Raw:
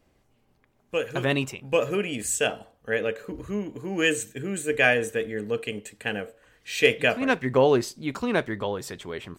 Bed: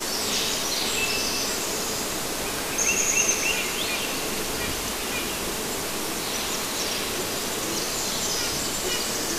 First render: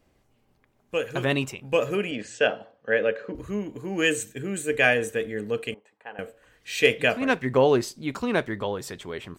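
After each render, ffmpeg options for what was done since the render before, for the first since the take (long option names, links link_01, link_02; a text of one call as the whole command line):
ffmpeg -i in.wav -filter_complex "[0:a]asettb=1/sr,asplit=3[link_01][link_02][link_03];[link_01]atrim=end=2.114[link_04];[link_02]atrim=start=2.11:end=3.35,asetpts=PTS-STARTPTS,afade=type=in:duration=0.004:curve=qsin,afade=type=out:start_time=1.236:duration=0.004:curve=qsin,highpass=frequency=110:width=0.5412,highpass=frequency=110:width=1.3066,equalizer=frequency=130:width_type=q:width=4:gain=-4,equalizer=frequency=550:width_type=q:width=4:gain=7,equalizer=frequency=1600:width_type=q:width=4:gain=5,equalizer=frequency=3800:width_type=q:width=4:gain=-3,lowpass=frequency=5000:width=0.5412,lowpass=frequency=5000:width=1.3066[link_05];[link_03]atrim=start=3.346[link_06];[link_04][link_05]acrossfade=duration=0.004:curve1=hsin:curve2=qsin[link_07];[link_07][link_06]acrossfade=duration=0.004:curve1=qsin:curve2=hsin,asettb=1/sr,asplit=3[link_08][link_09][link_10];[link_08]atrim=end=5.744[link_11];[link_09]atrim=start=5.74:end=6.19,asetpts=PTS-STARTPTS,afade=type=in:duration=0.004:curve=qsin,afade=type=out:start_time=0.446:duration=0.004:curve=qsin,bandpass=frequency=910:width_type=q:width=2.9[link_12];[link_10]atrim=start=6.186[link_13];[link_11][link_12]acrossfade=duration=0.004:curve1=hsin:curve2=qsin[link_14];[link_14][link_13]acrossfade=duration=0.004:curve1=qsin:curve2=hsin" out.wav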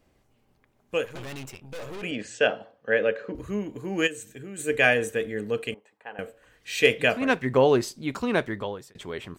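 ffmpeg -i in.wav -filter_complex "[0:a]asettb=1/sr,asplit=3[link_01][link_02][link_03];[link_01]atrim=end=1.054[link_04];[link_02]atrim=start=1.05:end=2.03,asetpts=PTS-STARTPTS,afade=type=in:duration=0.004:curve=qsin,afade=type=out:start_time=0.976:duration=0.004:curve=qsin,aeval=exprs='(tanh(63.1*val(0)+0.8)-tanh(0.8))/63.1':channel_layout=same[link_05];[link_03]atrim=start=2.026[link_06];[link_04][link_05]acrossfade=duration=0.004:curve1=hsin:curve2=qsin[link_07];[link_07][link_06]acrossfade=duration=0.004:curve1=qsin:curve2=hsin,asplit=3[link_08][link_09][link_10];[link_08]afade=type=out:start_time=4.06:duration=0.02[link_11];[link_09]acompressor=threshold=-43dB:ratio=2:attack=3.2:release=140:knee=1:detection=peak,afade=type=in:start_time=4.06:duration=0.02,afade=type=out:start_time=4.58:duration=0.02[link_12];[link_10]afade=type=in:start_time=4.58:duration=0.02[link_13];[link_11][link_12][link_13]amix=inputs=3:normalize=0,asplit=2[link_14][link_15];[link_14]atrim=end=8.95,asetpts=PTS-STARTPTS,afade=type=out:start_time=8.38:duration=0.57:curve=qsin[link_16];[link_15]atrim=start=8.95,asetpts=PTS-STARTPTS,afade=type=in:duration=0.004:curve=hsin[link_17];[link_16][link_17]concat=n=2:v=0:a=1" out.wav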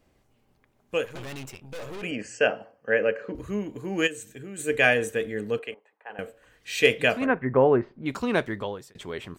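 ffmpeg -i in.wav -filter_complex "[0:a]asettb=1/sr,asplit=3[link_01][link_02][link_03];[link_01]atrim=end=2.074[link_04];[link_02]atrim=start=2.07:end=3.22,asetpts=PTS-STARTPTS,afade=type=in:duration=0.004:curve=qsin,afade=type=out:start_time=1.146:duration=0.004:curve=qsin,asuperstop=centerf=3700:order=8:qfactor=2.8[link_05];[link_03]atrim=start=3.216[link_06];[link_04][link_05]acrossfade=duration=0.004:curve1=hsin:curve2=qsin[link_07];[link_07][link_06]acrossfade=duration=0.004:curve1=qsin:curve2=hsin,asettb=1/sr,asplit=3[link_08][link_09][link_10];[link_08]atrim=end=5.594[link_11];[link_09]atrim=start=5.59:end=6.1,asetpts=PTS-STARTPTS,afade=type=in:duration=0.004:curve=qsin,afade=type=out:start_time=0.506:duration=0.004:curve=qsin,acrossover=split=380 2700:gain=0.158 1 0.2[link_12][link_13][link_14];[link_12][link_13][link_14]amix=inputs=3:normalize=0[link_15];[link_10]atrim=start=6.096[link_16];[link_11][link_15]acrossfade=duration=0.004:curve1=hsin:curve2=qsin[link_17];[link_17][link_16]acrossfade=duration=0.004:curve1=qsin:curve2=hsin,asettb=1/sr,asplit=3[link_18][link_19][link_20];[link_18]atrim=end=7.264[link_21];[link_19]atrim=start=7.26:end=8.06,asetpts=PTS-STARTPTS,afade=type=in:duration=0.004:curve=qsin,afade=type=out:start_time=0.796:duration=0.004:curve=qsin,lowpass=frequency=1900:width=0.5412,lowpass=frequency=1900:width=1.3066[link_22];[link_20]atrim=start=8.056[link_23];[link_21][link_22]acrossfade=duration=0.004:curve1=hsin:curve2=qsin[link_24];[link_24][link_23]acrossfade=duration=0.004:curve1=qsin:curve2=hsin" out.wav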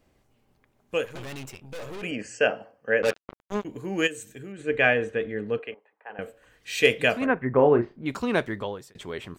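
ffmpeg -i in.wav -filter_complex "[0:a]asettb=1/sr,asplit=3[link_01][link_02][link_03];[link_01]atrim=end=3.024[link_04];[link_02]atrim=start=3.02:end=3.65,asetpts=PTS-STARTPTS,afade=type=in:duration=0.004:curve=qsin,afade=type=out:start_time=0.626:duration=0.004:curve=qsin,acrusher=bits=3:mix=0:aa=0.5[link_05];[link_03]atrim=start=3.646[link_06];[link_04][link_05]acrossfade=duration=0.004:curve1=hsin:curve2=qsin[link_07];[link_07][link_06]acrossfade=duration=0.004:curve1=qsin:curve2=hsin,asettb=1/sr,asplit=3[link_08][link_09][link_10];[link_08]atrim=end=4.524[link_11];[link_09]atrim=start=4.52:end=6.22,asetpts=PTS-STARTPTS,afade=type=in:duration=0.004:curve=qsin,afade=type=out:start_time=1.696:duration=0.004:curve=qsin,lowpass=2900[link_12];[link_10]atrim=start=6.216[link_13];[link_11][link_12]acrossfade=duration=0.004:curve1=hsin:curve2=qsin[link_14];[link_14][link_13]acrossfade=duration=0.004:curve1=qsin:curve2=hsin,asettb=1/sr,asplit=3[link_15][link_16][link_17];[link_15]atrim=end=7.544[link_18];[link_16]atrim=start=7.54:end=8.03,asetpts=PTS-STARTPTS,afade=type=in:duration=0.004:curve=qsin,afade=type=out:start_time=0.486:duration=0.004:curve=qsin,asplit=2[link_19][link_20];[link_20]adelay=34,volume=-8.5dB[link_21];[link_19][link_21]amix=inputs=2:normalize=0,atrim=end_sample=21609[link_22];[link_17]atrim=start=8.026[link_23];[link_18][link_22]acrossfade=duration=0.004:curve1=hsin:curve2=qsin[link_24];[link_24][link_23]acrossfade=duration=0.004:curve1=qsin:curve2=hsin" out.wav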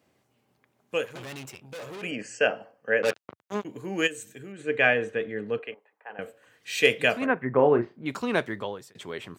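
ffmpeg -i in.wav -af "highpass=frequency=99:width=0.5412,highpass=frequency=99:width=1.3066,lowshelf=frequency=460:gain=-3" out.wav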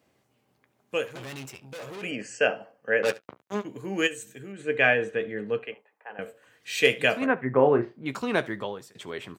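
ffmpeg -i in.wav -filter_complex "[0:a]asplit=2[link_01][link_02];[link_02]adelay=15,volume=-13.5dB[link_03];[link_01][link_03]amix=inputs=2:normalize=0,aecho=1:1:71:0.0841" out.wav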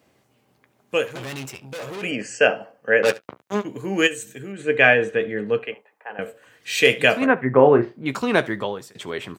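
ffmpeg -i in.wav -af "volume=6.5dB,alimiter=limit=-1dB:level=0:latency=1" out.wav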